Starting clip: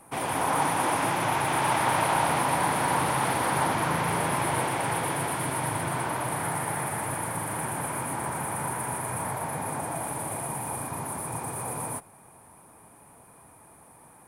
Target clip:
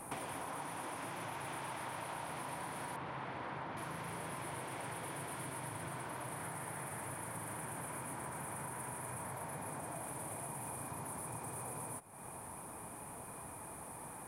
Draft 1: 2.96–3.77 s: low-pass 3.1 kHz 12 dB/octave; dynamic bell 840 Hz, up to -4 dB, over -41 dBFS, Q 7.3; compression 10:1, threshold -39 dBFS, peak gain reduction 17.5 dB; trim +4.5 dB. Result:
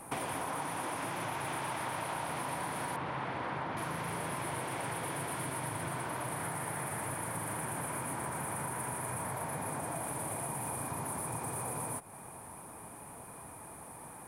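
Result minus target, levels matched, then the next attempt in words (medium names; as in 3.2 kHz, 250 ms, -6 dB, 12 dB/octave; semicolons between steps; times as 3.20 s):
compression: peak gain reduction -6.5 dB
2.96–3.77 s: low-pass 3.1 kHz 12 dB/octave; dynamic bell 840 Hz, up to -4 dB, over -41 dBFS, Q 7.3; compression 10:1, threshold -46 dBFS, peak gain reduction 24 dB; trim +4.5 dB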